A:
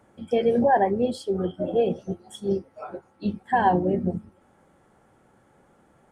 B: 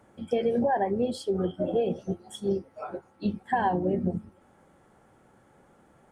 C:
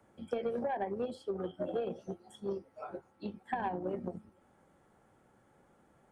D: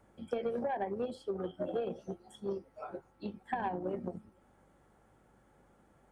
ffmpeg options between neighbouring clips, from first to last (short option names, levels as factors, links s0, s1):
-af "acompressor=threshold=0.0794:ratio=6"
-filter_complex "[0:a]aeval=exprs='0.211*(cos(1*acos(clip(val(0)/0.211,-1,1)))-cos(1*PI/2))+0.0299*(cos(3*acos(clip(val(0)/0.211,-1,1)))-cos(3*PI/2))':c=same,acrossover=split=200|410|2500[s0][s1][s2][s3];[s0]acompressor=threshold=0.00398:ratio=4[s4];[s1]acompressor=threshold=0.00891:ratio=4[s5];[s2]acompressor=threshold=0.0282:ratio=4[s6];[s3]acompressor=threshold=0.00112:ratio=4[s7];[s4][s5][s6][s7]amix=inputs=4:normalize=0,volume=0.794"
-af "aeval=exprs='val(0)+0.000251*(sin(2*PI*50*n/s)+sin(2*PI*2*50*n/s)/2+sin(2*PI*3*50*n/s)/3+sin(2*PI*4*50*n/s)/4+sin(2*PI*5*50*n/s)/5)':c=same"